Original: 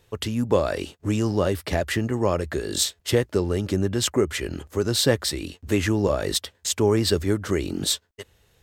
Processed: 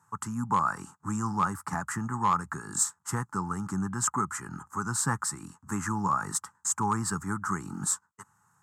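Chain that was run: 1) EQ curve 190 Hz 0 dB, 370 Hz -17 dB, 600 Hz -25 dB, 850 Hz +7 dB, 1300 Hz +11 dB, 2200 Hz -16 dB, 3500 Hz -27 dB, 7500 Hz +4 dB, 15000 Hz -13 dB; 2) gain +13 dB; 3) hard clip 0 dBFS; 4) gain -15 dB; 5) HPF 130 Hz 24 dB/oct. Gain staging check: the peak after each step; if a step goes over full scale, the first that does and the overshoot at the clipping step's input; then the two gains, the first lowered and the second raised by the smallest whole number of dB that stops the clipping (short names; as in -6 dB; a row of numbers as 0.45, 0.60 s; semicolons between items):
-9.0, +4.0, 0.0, -15.0, -13.5 dBFS; step 2, 4.0 dB; step 2 +9 dB, step 4 -11 dB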